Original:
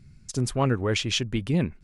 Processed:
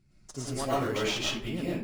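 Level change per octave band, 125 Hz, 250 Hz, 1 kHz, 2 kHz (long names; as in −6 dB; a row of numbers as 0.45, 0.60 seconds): −11.0, −6.0, −1.0, −3.0 decibels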